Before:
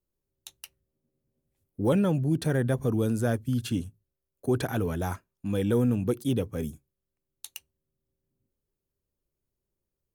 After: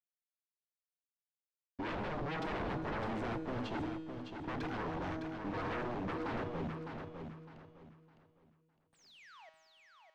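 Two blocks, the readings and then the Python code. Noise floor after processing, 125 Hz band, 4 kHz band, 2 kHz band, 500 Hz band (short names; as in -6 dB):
under -85 dBFS, -15.5 dB, -8.0 dB, -3.0 dB, -11.5 dB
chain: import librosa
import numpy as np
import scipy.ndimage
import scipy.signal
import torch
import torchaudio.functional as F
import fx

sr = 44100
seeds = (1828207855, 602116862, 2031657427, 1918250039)

p1 = scipy.signal.sosfilt(scipy.signal.butter(2, 100.0, 'highpass', fs=sr, output='sos'), x)
p2 = fx.hum_notches(p1, sr, base_hz=50, count=7)
p3 = fx.env_lowpass(p2, sr, base_hz=1000.0, full_db=-24.5)
p4 = fx.peak_eq(p3, sr, hz=300.0, db=12.0, octaves=0.31)
p5 = fx.leveller(p4, sr, passes=2)
p6 = fx.spec_paint(p5, sr, seeds[0], shape='fall', start_s=8.92, length_s=0.58, low_hz=580.0, high_hz=9400.0, level_db=-38.0)
p7 = fx.quant_dither(p6, sr, seeds[1], bits=6, dither='none')
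p8 = p6 + (p7 * librosa.db_to_amplitude(-9.0))
p9 = np.sign(p8) * np.maximum(np.abs(p8) - 10.0 ** (-38.5 / 20.0), 0.0)
p10 = fx.comb_fb(p9, sr, f0_hz=160.0, decay_s=1.8, harmonics='all', damping=0.0, mix_pct=80)
p11 = 10.0 ** (-32.0 / 20.0) * (np.abs((p10 / 10.0 ** (-32.0 / 20.0) + 3.0) % 4.0 - 2.0) - 1.0)
p12 = fx.air_absorb(p11, sr, metres=190.0)
p13 = p12 + fx.echo_feedback(p12, sr, ms=608, feedback_pct=28, wet_db=-6.5, dry=0)
y = p13 * librosa.db_to_amplitude(-1.0)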